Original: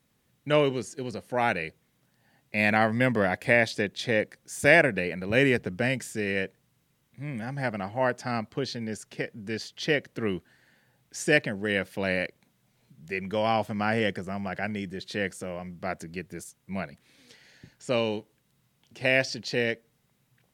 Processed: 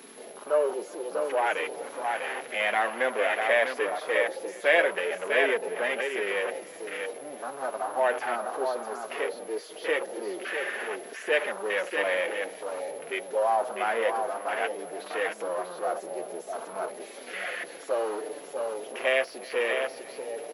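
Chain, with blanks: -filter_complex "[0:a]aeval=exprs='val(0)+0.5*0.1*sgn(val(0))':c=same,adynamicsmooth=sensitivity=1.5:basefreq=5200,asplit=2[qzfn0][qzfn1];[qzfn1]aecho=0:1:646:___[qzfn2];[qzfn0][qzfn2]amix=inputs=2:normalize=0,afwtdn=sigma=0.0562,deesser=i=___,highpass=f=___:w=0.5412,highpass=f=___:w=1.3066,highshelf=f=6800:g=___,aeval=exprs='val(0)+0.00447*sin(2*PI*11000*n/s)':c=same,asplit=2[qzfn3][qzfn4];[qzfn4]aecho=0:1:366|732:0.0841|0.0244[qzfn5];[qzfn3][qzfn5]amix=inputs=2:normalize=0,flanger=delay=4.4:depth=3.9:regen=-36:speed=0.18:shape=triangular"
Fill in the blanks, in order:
0.562, 0.45, 430, 430, -4.5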